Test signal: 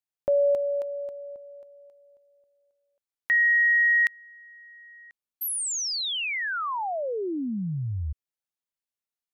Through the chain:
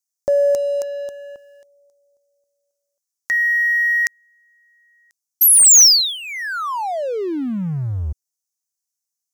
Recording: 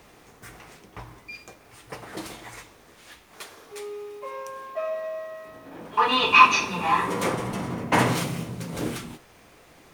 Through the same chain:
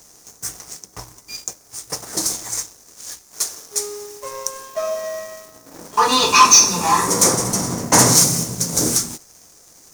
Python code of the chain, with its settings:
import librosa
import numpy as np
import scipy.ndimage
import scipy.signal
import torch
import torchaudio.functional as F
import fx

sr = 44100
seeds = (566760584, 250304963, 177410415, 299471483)

y = fx.high_shelf_res(x, sr, hz=4200.0, db=13.5, q=3.0)
y = fx.leveller(y, sr, passes=2)
y = y * 10.0 ** (-1.0 / 20.0)